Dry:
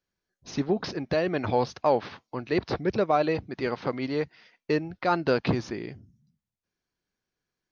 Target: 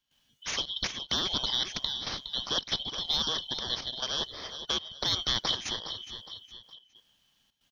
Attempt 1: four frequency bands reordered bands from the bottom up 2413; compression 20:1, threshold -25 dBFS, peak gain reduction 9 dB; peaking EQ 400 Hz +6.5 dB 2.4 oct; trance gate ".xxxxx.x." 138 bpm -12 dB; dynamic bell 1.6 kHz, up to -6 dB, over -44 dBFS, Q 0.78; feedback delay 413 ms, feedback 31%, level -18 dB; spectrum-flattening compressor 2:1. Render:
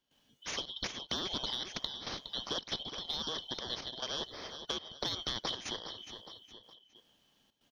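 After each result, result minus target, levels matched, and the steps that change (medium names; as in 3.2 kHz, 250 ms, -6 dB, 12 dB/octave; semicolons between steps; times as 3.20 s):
compression: peak gain reduction +9 dB; 500 Hz band +5.0 dB
remove: compression 20:1, threshold -25 dBFS, peak gain reduction 9 dB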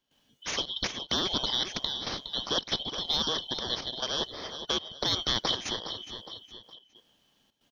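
500 Hz band +4.5 dB
change: peaking EQ 400 Hz -5 dB 2.4 oct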